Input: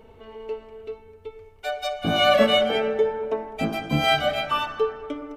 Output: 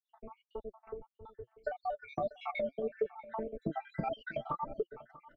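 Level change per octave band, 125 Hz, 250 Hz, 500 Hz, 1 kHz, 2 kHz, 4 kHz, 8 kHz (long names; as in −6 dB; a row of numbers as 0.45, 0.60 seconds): −15.0 dB, −15.0 dB, −15.0 dB, −14.0 dB, −19.5 dB, −32.5 dB, below −35 dB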